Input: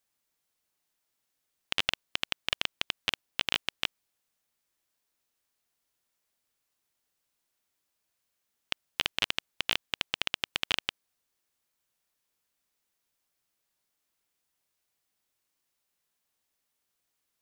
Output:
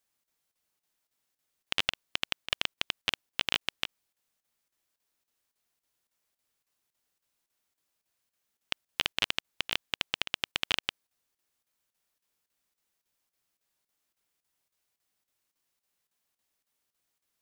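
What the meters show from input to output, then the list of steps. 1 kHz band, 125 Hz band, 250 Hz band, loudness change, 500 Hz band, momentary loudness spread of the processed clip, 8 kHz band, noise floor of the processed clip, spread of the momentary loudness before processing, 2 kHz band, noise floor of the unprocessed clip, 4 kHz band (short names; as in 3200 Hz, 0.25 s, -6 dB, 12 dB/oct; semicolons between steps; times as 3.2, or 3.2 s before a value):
-0.5 dB, -0.5 dB, -0.5 dB, -0.5 dB, -0.5 dB, 6 LU, -0.5 dB, under -85 dBFS, 5 LU, -0.5 dB, -81 dBFS, -0.5 dB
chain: chopper 3.6 Hz, depth 65%, duty 85%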